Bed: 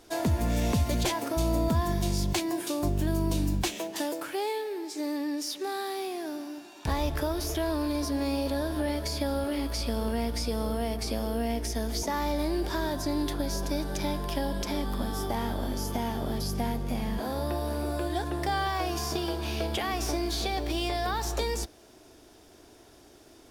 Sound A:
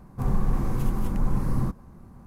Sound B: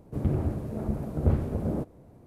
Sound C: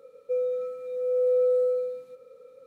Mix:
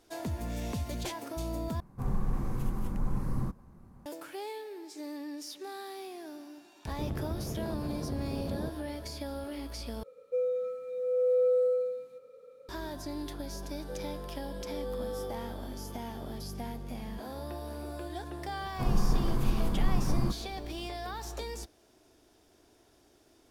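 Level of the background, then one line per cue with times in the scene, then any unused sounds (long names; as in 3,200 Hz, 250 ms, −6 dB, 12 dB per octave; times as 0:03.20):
bed −9 dB
0:01.80: overwrite with A −7 dB
0:06.86: mix in B −1 dB + downward compressor, threshold −31 dBFS
0:10.03: overwrite with C −3 dB
0:13.59: mix in C −15.5 dB
0:18.61: mix in A −2.5 dB + parametric band 87 Hz −4.5 dB 1.1 octaves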